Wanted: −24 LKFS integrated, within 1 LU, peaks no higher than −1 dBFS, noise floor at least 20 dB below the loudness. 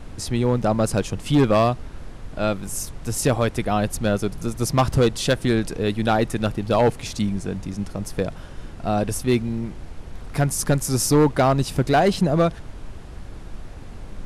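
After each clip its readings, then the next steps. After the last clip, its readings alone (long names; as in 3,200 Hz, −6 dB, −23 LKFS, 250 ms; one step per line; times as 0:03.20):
share of clipped samples 0.9%; peaks flattened at −11.0 dBFS; background noise floor −37 dBFS; target noise floor −42 dBFS; integrated loudness −22.0 LKFS; sample peak −11.0 dBFS; target loudness −24.0 LKFS
→ clipped peaks rebuilt −11 dBFS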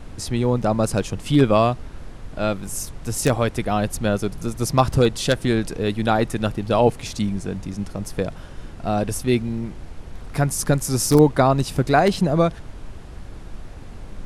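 share of clipped samples 0.0%; background noise floor −37 dBFS; target noise floor −42 dBFS
→ noise reduction from a noise print 6 dB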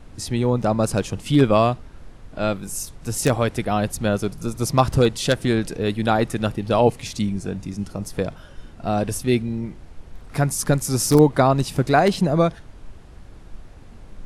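background noise floor −43 dBFS; integrated loudness −21.5 LKFS; sample peak −2.5 dBFS; target loudness −24.0 LKFS
→ level −2.5 dB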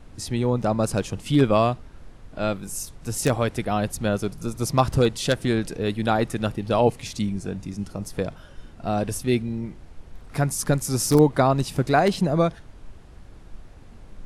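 integrated loudness −24.0 LKFS; sample peak −5.0 dBFS; background noise floor −46 dBFS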